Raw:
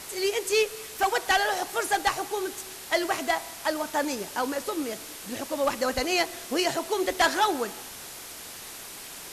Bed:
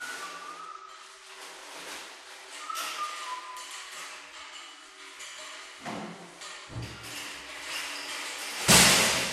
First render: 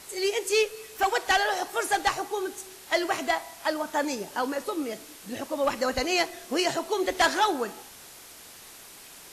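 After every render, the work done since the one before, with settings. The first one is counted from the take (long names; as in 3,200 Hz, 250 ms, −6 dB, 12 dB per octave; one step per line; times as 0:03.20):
noise reduction from a noise print 6 dB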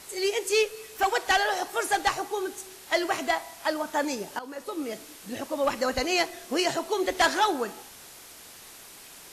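0:04.39–0:04.93: fade in, from −15.5 dB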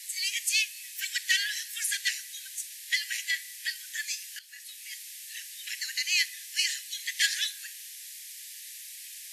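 Butterworth high-pass 1,700 Hz 96 dB per octave
high-shelf EQ 4,000 Hz +5.5 dB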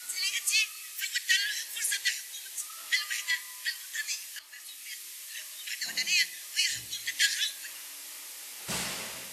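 mix in bed −16 dB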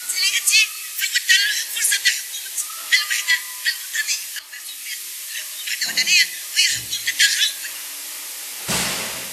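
level +12 dB
brickwall limiter −3 dBFS, peak gain reduction 2.5 dB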